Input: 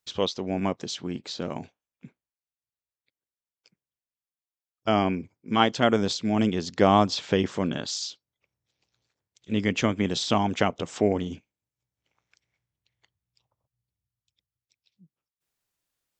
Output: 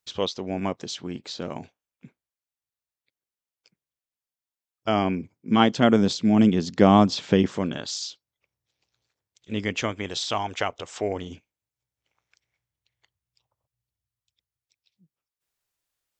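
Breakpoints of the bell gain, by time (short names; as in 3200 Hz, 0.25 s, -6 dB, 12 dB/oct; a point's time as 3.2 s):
bell 200 Hz 1.6 oct
4.88 s -1.5 dB
5.53 s +7 dB
7.39 s +7 dB
7.79 s -4 dB
9.6 s -4 dB
10.24 s -15 dB
10.92 s -15 dB
11.32 s -5.5 dB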